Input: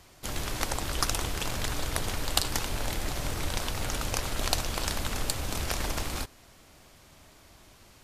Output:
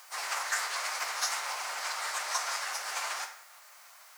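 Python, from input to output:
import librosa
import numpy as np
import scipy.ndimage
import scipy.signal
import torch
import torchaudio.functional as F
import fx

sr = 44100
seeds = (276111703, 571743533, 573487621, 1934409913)

y = scipy.signal.sosfilt(scipy.signal.butter(2, 5100.0, 'lowpass', fs=sr, output='sos'), x)
y = fx.quant_dither(y, sr, seeds[0], bits=10, dither='triangular')
y = fx.peak_eq(y, sr, hz=2500.0, db=-8.5, octaves=0.51)
y = fx.rev_fdn(y, sr, rt60_s=1.2, lf_ratio=0.9, hf_ratio=0.8, size_ms=77.0, drr_db=2.5)
y = fx.stretch_vocoder_free(y, sr, factor=0.52)
y = fx.rider(y, sr, range_db=10, speed_s=0.5)
y = fx.formant_shift(y, sr, semitones=5)
y = scipy.signal.sosfilt(scipy.signal.butter(4, 790.0, 'highpass', fs=sr, output='sos'), y)
y = y * librosa.db_to_amplitude(5.5)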